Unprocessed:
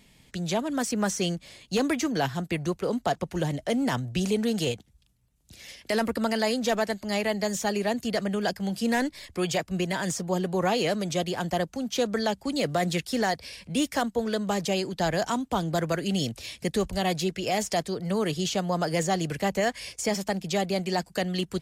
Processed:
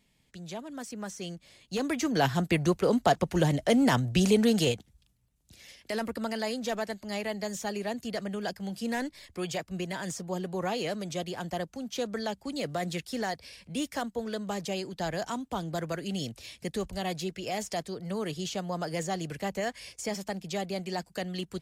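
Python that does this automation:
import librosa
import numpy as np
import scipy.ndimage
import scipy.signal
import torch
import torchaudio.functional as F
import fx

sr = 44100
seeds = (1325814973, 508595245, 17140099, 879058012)

y = fx.gain(x, sr, db=fx.line((1.16, -12.0), (1.87, -5.0), (2.31, 3.0), (4.45, 3.0), (5.7, -6.5)))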